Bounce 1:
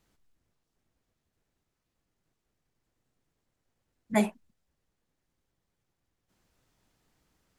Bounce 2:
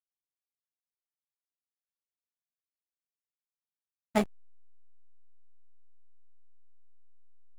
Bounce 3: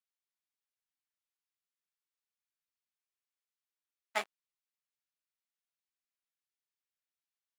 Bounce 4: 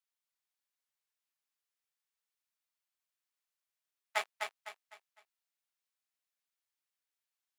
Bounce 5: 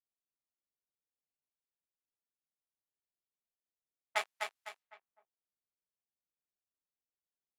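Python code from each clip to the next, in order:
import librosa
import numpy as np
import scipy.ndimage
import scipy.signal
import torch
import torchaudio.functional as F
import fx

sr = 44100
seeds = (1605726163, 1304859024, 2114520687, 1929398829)

y1 = fx.power_curve(x, sr, exponent=2.0)
y1 = fx.backlash(y1, sr, play_db=-29.5)
y1 = F.gain(torch.from_numpy(y1), 3.0).numpy()
y2 = scipy.signal.sosfilt(scipy.signal.butter(2, 1200.0, 'highpass', fs=sr, output='sos'), y1)
y2 = fx.high_shelf(y2, sr, hz=6700.0, db=-9.5)
y2 = F.gain(torch.from_numpy(y2), 2.5).numpy()
y3 = scipy.signal.sosfilt(scipy.signal.butter(2, 580.0, 'highpass', fs=sr, output='sos'), y2)
y3 = fx.echo_feedback(y3, sr, ms=253, feedback_pct=35, wet_db=-5.0)
y3 = F.gain(torch.from_numpy(y3), 1.0).numpy()
y4 = fx.env_lowpass(y3, sr, base_hz=510.0, full_db=-44.5)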